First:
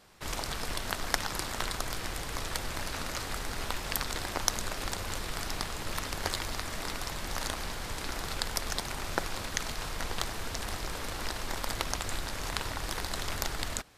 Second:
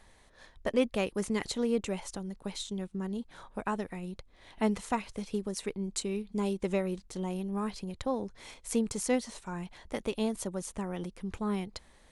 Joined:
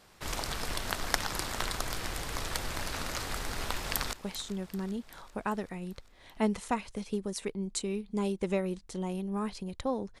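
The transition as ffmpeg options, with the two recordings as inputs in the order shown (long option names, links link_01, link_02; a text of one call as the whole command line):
ffmpeg -i cue0.wav -i cue1.wav -filter_complex "[0:a]apad=whole_dur=10.2,atrim=end=10.2,atrim=end=4.132[link_01];[1:a]atrim=start=2.338:end=8.41[link_02];[link_01][link_02]acrossfade=duration=0.004:curve1=hsin:curve2=hsin,asplit=2[link_03][link_04];[link_04]afade=type=in:start_time=3.73:duration=0.01,afade=type=out:start_time=4.13:duration=0.01,aecho=0:1:390|780|1170|1560|1950|2340|2730:0.16788|0.109122|0.0709295|0.0461042|0.0299677|0.019479|0.0126614[link_05];[link_03][link_05]amix=inputs=2:normalize=0" out.wav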